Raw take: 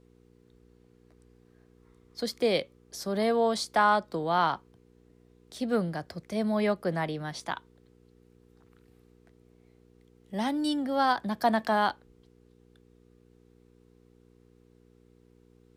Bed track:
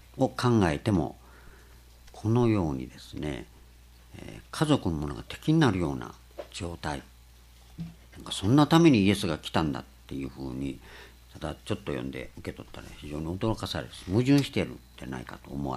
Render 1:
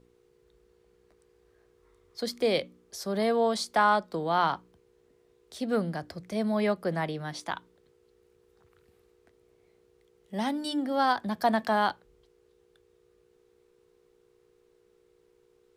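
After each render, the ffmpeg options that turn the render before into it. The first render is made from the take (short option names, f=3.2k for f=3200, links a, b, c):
-af "bandreject=f=60:t=h:w=4,bandreject=f=120:t=h:w=4,bandreject=f=180:t=h:w=4,bandreject=f=240:t=h:w=4,bandreject=f=300:t=h:w=4"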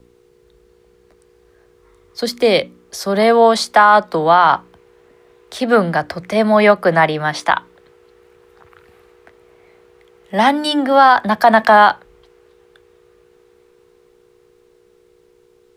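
-filter_complex "[0:a]acrossover=split=250|600|2800[a][b][c][d];[c]dynaudnorm=f=320:g=21:m=11dB[e];[a][b][e][d]amix=inputs=4:normalize=0,alimiter=level_in=11.5dB:limit=-1dB:release=50:level=0:latency=1"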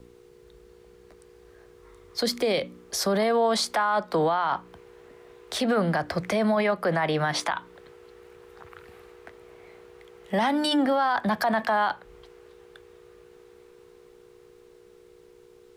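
-af "acompressor=threshold=-19dB:ratio=2.5,alimiter=limit=-16dB:level=0:latency=1:release=18"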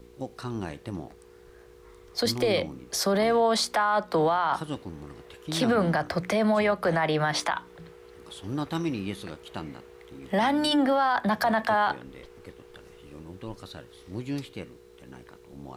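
-filter_complex "[1:a]volume=-10.5dB[a];[0:a][a]amix=inputs=2:normalize=0"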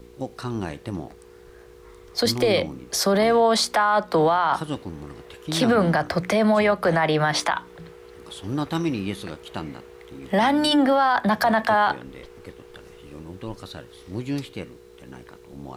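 -af "volume=4.5dB"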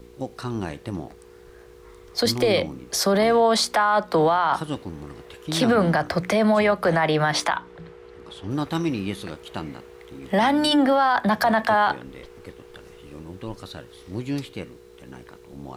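-filter_complex "[0:a]asettb=1/sr,asplit=3[a][b][c];[a]atrim=end=7.564[d];[b]atrim=start=7.56:end=8.51,asetpts=PTS-STARTPTS,afade=t=in:d=0.004:c=qsin,afade=t=out:st=0.946:d=0.004:c=qsin,aemphasis=mode=reproduction:type=50fm[e];[c]atrim=start=8.506[f];[d][e]acrossfade=d=0.004:c1=hsin:c2=qsin[g];[g][f]acrossfade=d=0.004:c1=qsin:c2=hsin"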